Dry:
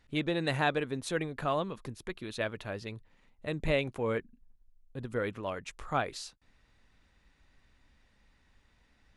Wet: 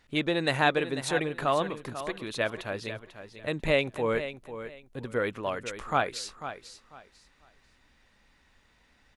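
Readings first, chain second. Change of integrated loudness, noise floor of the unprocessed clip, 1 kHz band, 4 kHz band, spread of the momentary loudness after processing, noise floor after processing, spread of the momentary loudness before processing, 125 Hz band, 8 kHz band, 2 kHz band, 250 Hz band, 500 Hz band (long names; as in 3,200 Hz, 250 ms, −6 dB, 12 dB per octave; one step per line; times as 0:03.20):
+4.0 dB, −68 dBFS, +5.5 dB, +6.0 dB, 16 LU, −65 dBFS, 13 LU, +0.5 dB, +6.0 dB, +5.5 dB, +3.0 dB, +4.5 dB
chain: low-shelf EQ 220 Hz −7.5 dB
repeating echo 494 ms, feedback 23%, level −11.5 dB
level +5.5 dB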